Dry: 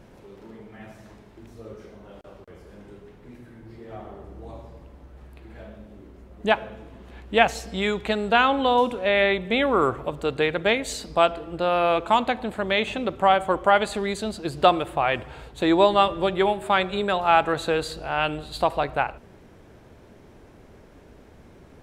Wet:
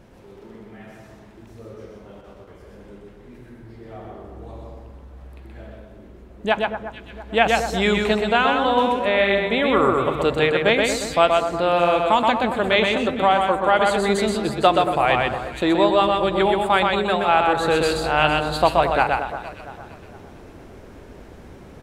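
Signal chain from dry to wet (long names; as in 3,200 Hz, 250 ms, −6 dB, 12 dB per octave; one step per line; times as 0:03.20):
single-tap delay 126 ms −3.5 dB
speech leveller within 4 dB 0.5 s
delay that swaps between a low-pass and a high-pass 229 ms, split 1,700 Hz, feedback 56%, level −9.5 dB
level +2 dB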